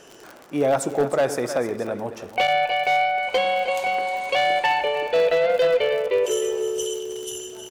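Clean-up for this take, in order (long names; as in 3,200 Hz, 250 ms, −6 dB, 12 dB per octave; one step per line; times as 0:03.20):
clipped peaks rebuilt −13.5 dBFS
click removal
echo removal 312 ms −12.5 dB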